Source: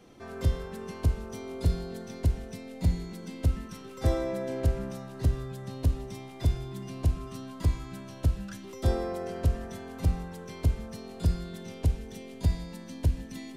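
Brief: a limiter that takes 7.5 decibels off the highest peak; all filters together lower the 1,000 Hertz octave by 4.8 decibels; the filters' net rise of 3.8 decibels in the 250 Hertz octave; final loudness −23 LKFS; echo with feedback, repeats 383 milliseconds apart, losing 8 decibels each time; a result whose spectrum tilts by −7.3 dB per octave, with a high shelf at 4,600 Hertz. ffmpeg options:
ffmpeg -i in.wav -af "equalizer=frequency=250:width_type=o:gain=5.5,equalizer=frequency=1000:width_type=o:gain=-8,highshelf=frequency=4600:gain=6.5,alimiter=limit=-19.5dB:level=0:latency=1,aecho=1:1:383|766|1149|1532|1915:0.398|0.159|0.0637|0.0255|0.0102,volume=10.5dB" out.wav

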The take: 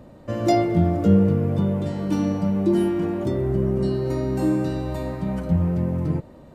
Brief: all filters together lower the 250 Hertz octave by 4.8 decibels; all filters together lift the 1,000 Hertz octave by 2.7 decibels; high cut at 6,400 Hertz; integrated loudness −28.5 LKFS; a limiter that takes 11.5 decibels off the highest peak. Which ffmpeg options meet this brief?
ffmpeg -i in.wav -af "lowpass=6400,equalizer=frequency=250:width_type=o:gain=-8,equalizer=frequency=1000:width_type=o:gain=5.5,volume=-0.5dB,alimiter=limit=-19.5dB:level=0:latency=1" out.wav

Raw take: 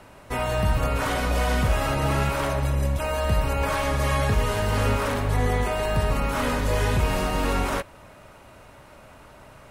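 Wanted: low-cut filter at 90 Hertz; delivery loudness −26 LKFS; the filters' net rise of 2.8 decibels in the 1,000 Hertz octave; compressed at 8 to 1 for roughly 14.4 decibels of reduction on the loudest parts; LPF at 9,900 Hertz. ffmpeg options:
ffmpeg -i in.wav -af "highpass=90,lowpass=9900,equalizer=frequency=1000:width_type=o:gain=3.5,acompressor=threshold=-35dB:ratio=8,volume=12.5dB" out.wav

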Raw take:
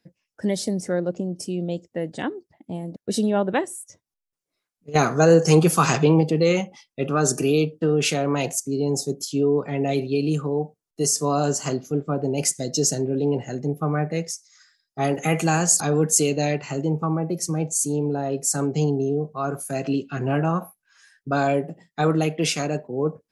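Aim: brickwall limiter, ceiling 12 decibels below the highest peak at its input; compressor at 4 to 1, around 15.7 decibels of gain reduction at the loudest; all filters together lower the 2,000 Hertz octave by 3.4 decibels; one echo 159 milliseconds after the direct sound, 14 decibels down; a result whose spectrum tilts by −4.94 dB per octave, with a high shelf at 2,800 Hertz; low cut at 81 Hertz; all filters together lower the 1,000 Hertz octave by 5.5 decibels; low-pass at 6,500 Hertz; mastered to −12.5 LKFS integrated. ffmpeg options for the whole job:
ffmpeg -i in.wav -af "highpass=81,lowpass=6500,equalizer=frequency=1000:width_type=o:gain=-8,equalizer=frequency=2000:width_type=o:gain=-5,highshelf=frequency=2800:gain=6,acompressor=threshold=-31dB:ratio=4,alimiter=level_in=4dB:limit=-24dB:level=0:latency=1,volume=-4dB,aecho=1:1:159:0.2,volume=24.5dB" out.wav

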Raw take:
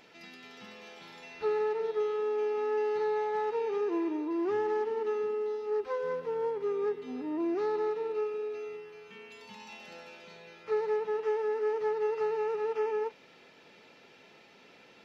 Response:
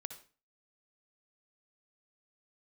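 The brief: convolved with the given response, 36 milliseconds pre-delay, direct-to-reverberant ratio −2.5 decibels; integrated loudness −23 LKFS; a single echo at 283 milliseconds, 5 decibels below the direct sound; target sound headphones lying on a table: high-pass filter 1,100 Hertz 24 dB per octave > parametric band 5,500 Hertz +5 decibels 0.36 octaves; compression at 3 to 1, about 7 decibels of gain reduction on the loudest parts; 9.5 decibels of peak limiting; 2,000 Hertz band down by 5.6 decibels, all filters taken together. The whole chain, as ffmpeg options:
-filter_complex "[0:a]equalizer=frequency=2000:width_type=o:gain=-7,acompressor=threshold=-37dB:ratio=3,alimiter=level_in=15dB:limit=-24dB:level=0:latency=1,volume=-15dB,aecho=1:1:283:0.562,asplit=2[link_01][link_02];[1:a]atrim=start_sample=2205,adelay=36[link_03];[link_02][link_03]afir=irnorm=-1:irlink=0,volume=5.5dB[link_04];[link_01][link_04]amix=inputs=2:normalize=0,highpass=frequency=1100:width=0.5412,highpass=frequency=1100:width=1.3066,equalizer=frequency=5500:width_type=o:width=0.36:gain=5,volume=29dB"

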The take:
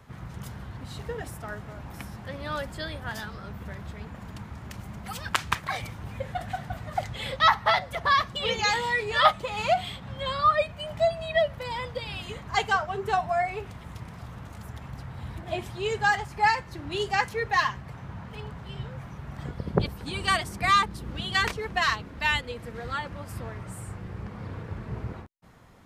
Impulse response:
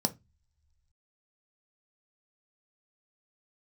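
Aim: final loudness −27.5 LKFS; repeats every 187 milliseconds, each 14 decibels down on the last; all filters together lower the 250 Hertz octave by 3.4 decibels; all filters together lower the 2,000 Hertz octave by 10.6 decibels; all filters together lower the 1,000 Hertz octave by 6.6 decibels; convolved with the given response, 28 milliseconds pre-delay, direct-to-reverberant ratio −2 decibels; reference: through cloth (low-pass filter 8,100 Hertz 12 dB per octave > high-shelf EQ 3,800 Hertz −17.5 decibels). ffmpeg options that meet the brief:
-filter_complex "[0:a]equalizer=frequency=250:width_type=o:gain=-5,equalizer=frequency=1000:width_type=o:gain=-5,equalizer=frequency=2000:width_type=o:gain=-7,aecho=1:1:187|374:0.2|0.0399,asplit=2[link_01][link_02];[1:a]atrim=start_sample=2205,adelay=28[link_03];[link_02][link_03]afir=irnorm=-1:irlink=0,volume=-3.5dB[link_04];[link_01][link_04]amix=inputs=2:normalize=0,lowpass=8100,highshelf=frequency=3800:gain=-17.5,volume=1dB"

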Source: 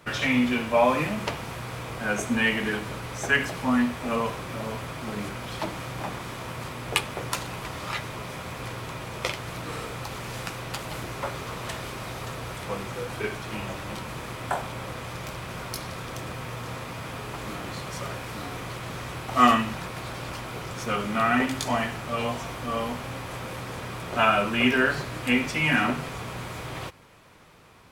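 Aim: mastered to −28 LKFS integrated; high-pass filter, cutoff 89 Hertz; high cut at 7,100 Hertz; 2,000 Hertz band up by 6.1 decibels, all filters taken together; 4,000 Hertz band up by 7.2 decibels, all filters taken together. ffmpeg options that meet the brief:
ffmpeg -i in.wav -af "highpass=89,lowpass=7100,equalizer=frequency=2000:width_type=o:gain=5.5,equalizer=frequency=4000:width_type=o:gain=8,volume=-3dB" out.wav

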